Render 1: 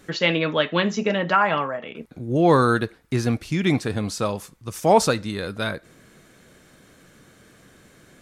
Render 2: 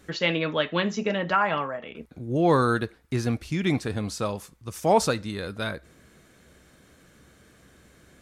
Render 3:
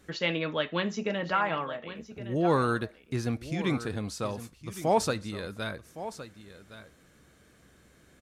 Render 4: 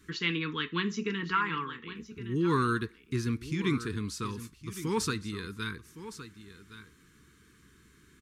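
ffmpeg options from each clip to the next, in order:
-af "equalizer=f=67:t=o:w=0.29:g=14,volume=-4dB"
-af "aecho=1:1:1114:0.211,volume=-4.5dB"
-af "asuperstop=centerf=650:order=8:qfactor=1.2"

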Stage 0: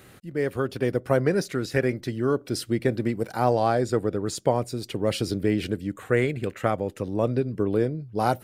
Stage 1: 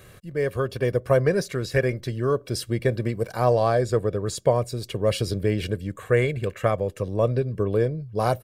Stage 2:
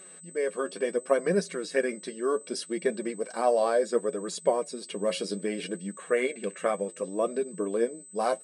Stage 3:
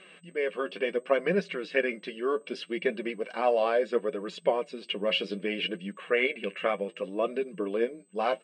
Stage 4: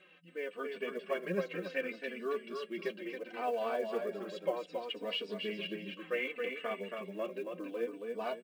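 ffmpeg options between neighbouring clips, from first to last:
-af "lowshelf=f=89:g=6,aecho=1:1:1.8:0.53"
-af "afftfilt=real='re*between(b*sr/4096,170,11000)':imag='im*between(b*sr/4096,170,11000)':win_size=4096:overlap=0.75,flanger=delay=4.5:depth=6.7:regen=41:speed=0.67:shape=triangular,aeval=exprs='val(0)+0.00447*sin(2*PI*8100*n/s)':c=same"
-af "lowpass=f=2.8k:t=q:w=4.7,volume=-1.5dB"
-filter_complex "[0:a]aecho=1:1:274|548|822|1096:0.562|0.163|0.0473|0.0137,acrusher=bits=8:mode=log:mix=0:aa=0.000001,asplit=2[a][b];[b]adelay=3.3,afreqshift=-0.67[c];[a][c]amix=inputs=2:normalize=1,volume=-6.5dB"

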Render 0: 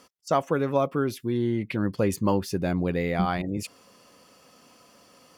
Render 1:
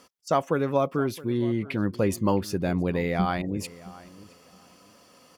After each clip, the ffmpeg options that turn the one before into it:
-filter_complex "[0:a]asplit=2[a][b];[b]adelay=667,lowpass=f=2.6k:p=1,volume=-19dB,asplit=2[c][d];[d]adelay=667,lowpass=f=2.6k:p=1,volume=0.21[e];[a][c][e]amix=inputs=3:normalize=0"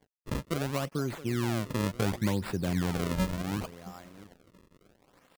-filter_complex "[0:a]acrossover=split=190|3000[a][b][c];[b]acompressor=threshold=-34dB:ratio=3[d];[a][d][c]amix=inputs=3:normalize=0,acrusher=samples=33:mix=1:aa=0.000001:lfo=1:lforange=52.8:lforate=0.7,aeval=exprs='sgn(val(0))*max(abs(val(0))-0.0015,0)':c=same"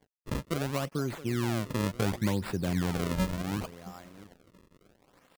-af anull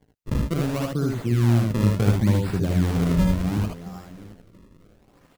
-filter_complex "[0:a]lowshelf=f=270:g=11,asplit=2[a][b];[b]aecho=0:1:59|77:0.473|0.708[c];[a][c]amix=inputs=2:normalize=0"

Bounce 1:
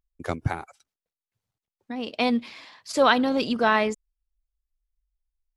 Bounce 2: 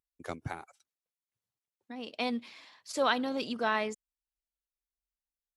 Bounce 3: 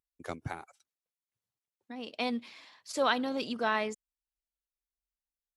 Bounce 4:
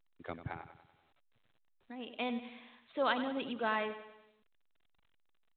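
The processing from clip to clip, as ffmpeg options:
-af "highpass=f=150:p=1,equalizer=f=9.6k:w=0.36:g=3.5,bandreject=f=4.9k:w=27,volume=-9dB"
-af anull
-filter_complex "[0:a]asplit=2[a][b];[b]aecho=0:1:96|192|288|384|480:0.251|0.126|0.0628|0.0314|0.0157[c];[a][c]amix=inputs=2:normalize=0,volume=-4dB" -ar 8000 -c:a pcm_alaw

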